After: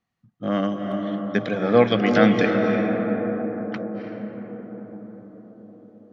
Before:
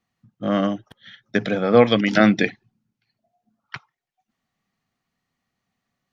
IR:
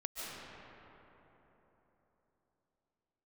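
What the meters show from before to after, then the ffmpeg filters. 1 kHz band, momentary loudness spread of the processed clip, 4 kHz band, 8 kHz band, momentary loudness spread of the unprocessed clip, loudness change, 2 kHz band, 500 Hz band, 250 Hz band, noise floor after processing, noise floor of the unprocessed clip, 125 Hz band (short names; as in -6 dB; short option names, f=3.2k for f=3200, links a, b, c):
0.0 dB, 19 LU, -3.5 dB, n/a, 11 LU, -2.5 dB, -1.5 dB, +0.5 dB, +0.5 dB, -74 dBFS, -83 dBFS, +0.5 dB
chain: -filter_complex "[0:a]highshelf=f=4.4k:g=-5.5,asplit=2[a][b];[1:a]atrim=start_sample=2205,asetrate=24255,aresample=44100[c];[b][c]afir=irnorm=-1:irlink=0,volume=-3dB[d];[a][d]amix=inputs=2:normalize=0,volume=-6.5dB"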